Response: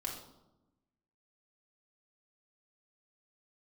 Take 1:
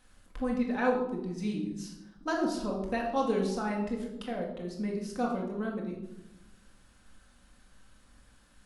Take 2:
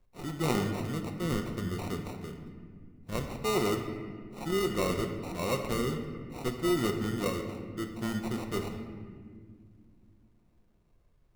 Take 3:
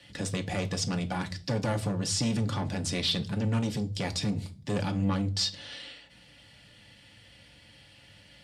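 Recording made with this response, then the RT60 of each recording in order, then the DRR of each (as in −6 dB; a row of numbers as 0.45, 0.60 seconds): 1; 0.95, 2.1, 0.40 seconds; −2.0, 4.0, 4.5 decibels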